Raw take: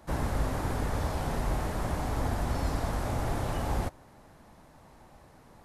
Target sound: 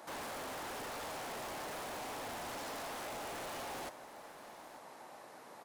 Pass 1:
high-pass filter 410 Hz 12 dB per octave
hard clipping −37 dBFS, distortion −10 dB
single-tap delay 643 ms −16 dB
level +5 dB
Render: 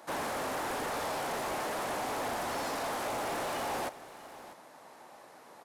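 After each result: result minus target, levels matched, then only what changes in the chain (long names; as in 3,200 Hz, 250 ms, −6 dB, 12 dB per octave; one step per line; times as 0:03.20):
echo 246 ms early; hard clipping: distortion −6 dB
change: single-tap delay 889 ms −16 dB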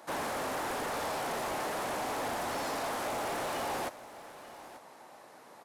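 hard clipping: distortion −6 dB
change: hard clipping −47.5 dBFS, distortion −4 dB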